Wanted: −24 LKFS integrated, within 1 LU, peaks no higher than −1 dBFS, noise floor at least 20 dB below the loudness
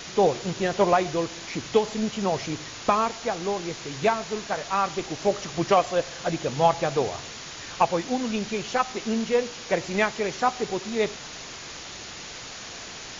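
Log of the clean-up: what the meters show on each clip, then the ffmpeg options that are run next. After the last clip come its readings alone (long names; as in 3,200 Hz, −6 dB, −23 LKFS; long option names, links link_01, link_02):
background noise floor −40 dBFS; target noise floor −46 dBFS; integrated loudness −26.0 LKFS; sample peak −8.0 dBFS; target loudness −24.0 LKFS
→ -af "afftdn=noise_reduction=6:noise_floor=-40"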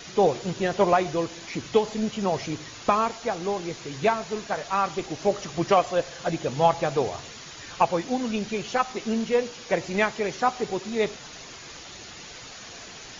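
background noise floor −43 dBFS; target noise floor −46 dBFS
→ -af "afftdn=noise_reduction=6:noise_floor=-43"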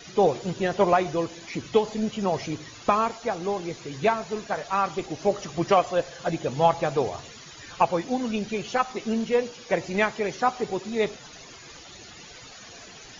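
background noise floor −46 dBFS; integrated loudness −26.0 LKFS; sample peak −8.0 dBFS; target loudness −24.0 LKFS
→ -af "volume=2dB"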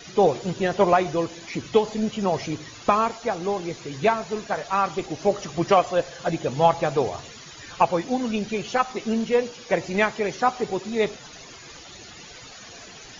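integrated loudness −24.0 LKFS; sample peak −6.0 dBFS; background noise floor −44 dBFS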